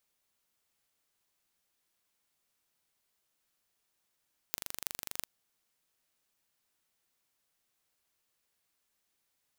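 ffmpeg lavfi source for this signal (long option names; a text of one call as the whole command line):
ffmpeg -f lavfi -i "aevalsrc='0.562*eq(mod(n,1807),0)*(0.5+0.5*eq(mod(n,14456),0))':duration=0.72:sample_rate=44100" out.wav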